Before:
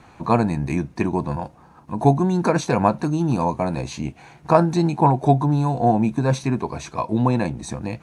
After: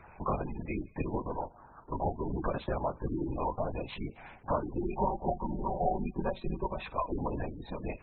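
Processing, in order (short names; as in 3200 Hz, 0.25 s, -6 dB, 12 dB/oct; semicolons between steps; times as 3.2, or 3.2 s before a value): compressor 12:1, threshold -23 dBFS, peak gain reduction 14.5 dB; HPF 250 Hz 12 dB/oct; LPC vocoder at 8 kHz whisper; 4.82–6.86 comb 5.3 ms, depth 60%; thin delay 78 ms, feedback 64%, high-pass 1500 Hz, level -18.5 dB; spectral gate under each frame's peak -20 dB strong; gain -3 dB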